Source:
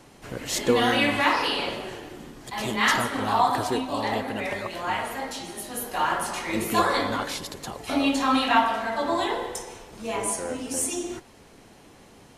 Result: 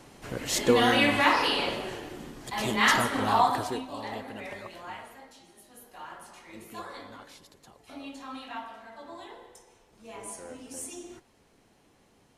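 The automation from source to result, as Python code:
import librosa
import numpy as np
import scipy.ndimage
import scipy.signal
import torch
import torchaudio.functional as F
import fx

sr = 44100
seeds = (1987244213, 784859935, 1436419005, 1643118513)

y = fx.gain(x, sr, db=fx.line((3.37, -0.5), (3.92, -10.0), (4.68, -10.0), (5.31, -19.0), (9.64, -19.0), (10.41, -12.0)))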